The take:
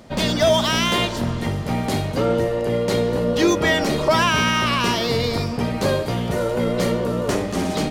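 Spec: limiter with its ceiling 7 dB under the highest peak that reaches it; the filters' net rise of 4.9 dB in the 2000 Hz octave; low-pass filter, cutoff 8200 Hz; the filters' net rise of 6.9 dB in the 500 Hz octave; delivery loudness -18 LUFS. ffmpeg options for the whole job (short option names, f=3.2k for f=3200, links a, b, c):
-af "lowpass=8.2k,equalizer=f=500:t=o:g=8,equalizer=f=2k:t=o:g=5.5,volume=-1dB,alimiter=limit=-8.5dB:level=0:latency=1"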